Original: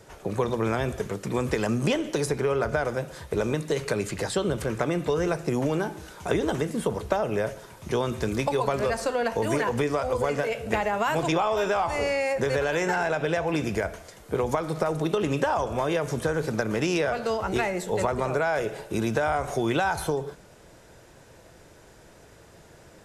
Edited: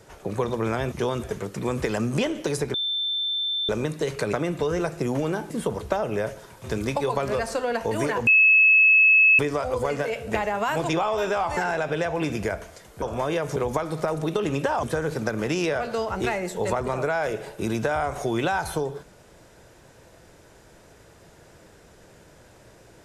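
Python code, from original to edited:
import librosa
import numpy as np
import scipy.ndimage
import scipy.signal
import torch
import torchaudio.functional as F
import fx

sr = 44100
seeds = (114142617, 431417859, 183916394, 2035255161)

y = fx.edit(x, sr, fx.bleep(start_s=2.43, length_s=0.95, hz=3550.0, db=-23.5),
    fx.cut(start_s=4.02, length_s=0.78),
    fx.cut(start_s=5.97, length_s=0.73),
    fx.move(start_s=7.84, length_s=0.31, to_s=0.92),
    fx.insert_tone(at_s=9.78, length_s=1.12, hz=2590.0, db=-12.5),
    fx.cut(start_s=11.96, length_s=0.93),
    fx.move(start_s=15.61, length_s=0.54, to_s=14.34), tone=tone)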